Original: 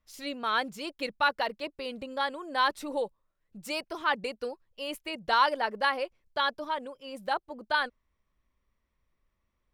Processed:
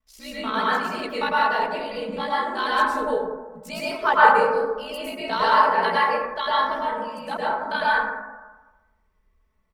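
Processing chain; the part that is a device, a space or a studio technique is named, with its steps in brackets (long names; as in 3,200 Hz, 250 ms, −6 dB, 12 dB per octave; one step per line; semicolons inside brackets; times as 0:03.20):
0:04.04–0:04.47: flat-topped bell 860 Hz +9 dB
ring-modulated robot voice (ring modulation 31 Hz; comb filter 4.6 ms)
dense smooth reverb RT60 1.2 s, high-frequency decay 0.3×, pre-delay 95 ms, DRR −8 dB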